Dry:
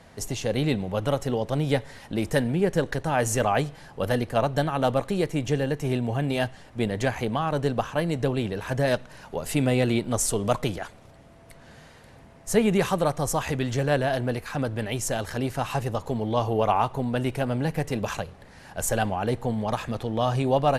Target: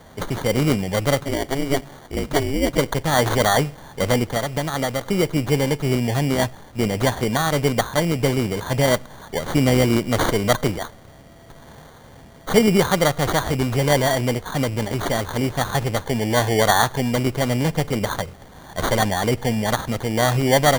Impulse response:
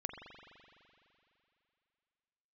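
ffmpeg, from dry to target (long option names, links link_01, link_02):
-filter_complex "[0:a]asplit=3[link_01][link_02][link_03];[link_01]afade=type=out:start_time=1.19:duration=0.02[link_04];[link_02]aeval=exprs='val(0)*sin(2*PI*140*n/s)':channel_layout=same,afade=type=in:start_time=1.19:duration=0.02,afade=type=out:start_time=2.77:duration=0.02[link_05];[link_03]afade=type=in:start_time=2.77:duration=0.02[link_06];[link_04][link_05][link_06]amix=inputs=3:normalize=0,asettb=1/sr,asplit=3[link_07][link_08][link_09];[link_07]atrim=end=4.314[link_10];[link_08]atrim=start=4.31:end=5.06,asetpts=PTS-STARTPTS,afade=type=in:duration=0.004:curve=qsin,afade=type=out:start_time=0.746:duration=0.004:curve=qsin,acompressor=threshold=-25dB:ratio=6[link_11];[link_09]atrim=start=5.056[link_12];[link_10][link_11]acrossfade=duration=0.004:curve1=hsin:curve2=qsin[link_13];[link_13][link_12]acrossfade=duration=0.004:curve1=qsin:curve2=hsin,acrusher=samples=17:mix=1:aa=0.000001,volume=5.5dB"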